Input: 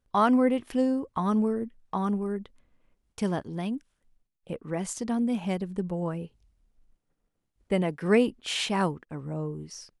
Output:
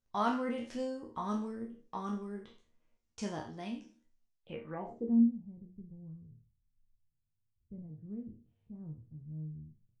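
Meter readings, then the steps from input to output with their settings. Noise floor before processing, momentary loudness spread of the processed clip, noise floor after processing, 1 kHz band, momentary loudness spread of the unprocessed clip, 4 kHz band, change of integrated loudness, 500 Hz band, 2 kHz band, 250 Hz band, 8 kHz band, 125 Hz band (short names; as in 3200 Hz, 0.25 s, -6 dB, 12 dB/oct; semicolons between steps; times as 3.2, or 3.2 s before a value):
-80 dBFS, 20 LU, -81 dBFS, -9.0 dB, 14 LU, under -15 dB, -8.5 dB, -13.5 dB, -13.5 dB, -8.0 dB, under -15 dB, -11.5 dB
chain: spectral trails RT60 0.42 s; resonator bank D#2 sus4, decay 0.25 s; low-pass sweep 6300 Hz -> 120 Hz, 4.32–5.39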